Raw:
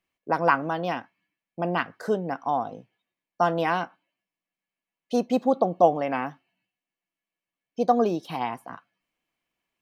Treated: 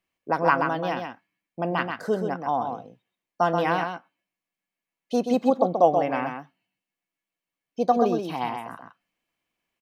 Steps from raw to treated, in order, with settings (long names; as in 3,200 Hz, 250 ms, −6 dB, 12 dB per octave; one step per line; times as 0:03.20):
single-tap delay 130 ms −6 dB